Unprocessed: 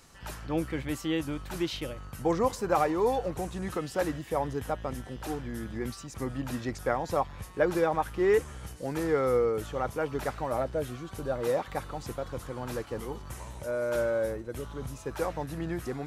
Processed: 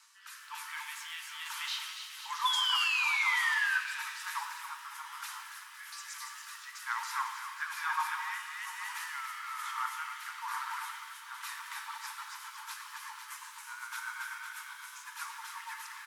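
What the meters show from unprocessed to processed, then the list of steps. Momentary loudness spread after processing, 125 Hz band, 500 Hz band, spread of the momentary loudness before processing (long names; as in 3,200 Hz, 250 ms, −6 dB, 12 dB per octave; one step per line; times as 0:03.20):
17 LU, below −40 dB, below −40 dB, 12 LU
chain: Chebyshev high-pass filter 900 Hz, order 8
on a send: bouncing-ball delay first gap 280 ms, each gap 0.8×, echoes 5
on the sum: rotating-speaker cabinet horn 1.1 Hz, later 8 Hz, at 0:11.23
sound drawn into the spectrogram fall, 0:02.45–0:03.79, 1,500–3,500 Hz −33 dBFS
reverb with rising layers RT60 1.5 s, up +7 semitones, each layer −8 dB, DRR 4.5 dB
level +1.5 dB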